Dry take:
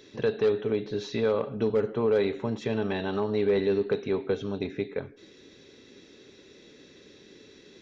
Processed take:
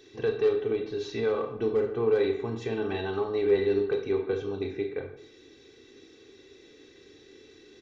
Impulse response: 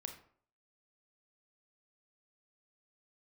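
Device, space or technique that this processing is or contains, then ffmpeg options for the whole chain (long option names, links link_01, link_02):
microphone above a desk: -filter_complex "[0:a]aecho=1:1:2.6:0.62,aecho=1:1:137|274|411:0.0708|0.0297|0.0125[link_01];[1:a]atrim=start_sample=2205[link_02];[link_01][link_02]afir=irnorm=-1:irlink=0"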